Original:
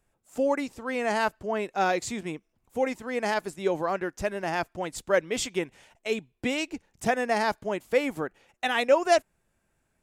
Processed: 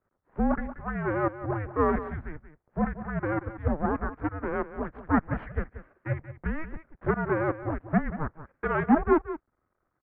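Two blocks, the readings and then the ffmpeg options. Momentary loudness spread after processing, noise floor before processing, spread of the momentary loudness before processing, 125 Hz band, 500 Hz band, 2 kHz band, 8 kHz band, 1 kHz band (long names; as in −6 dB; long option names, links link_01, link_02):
13 LU, −75 dBFS, 10 LU, +11.5 dB, −4.0 dB, −4.5 dB, below −40 dB, −2.0 dB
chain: -af "aeval=exprs='max(val(0),0)':channel_layout=same,aecho=1:1:182:0.224,highpass=frequency=230:width_type=q:width=0.5412,highpass=frequency=230:width_type=q:width=1.307,lowpass=frequency=2000:width_type=q:width=0.5176,lowpass=frequency=2000:width_type=q:width=0.7071,lowpass=frequency=2000:width_type=q:width=1.932,afreqshift=-310,volume=5dB"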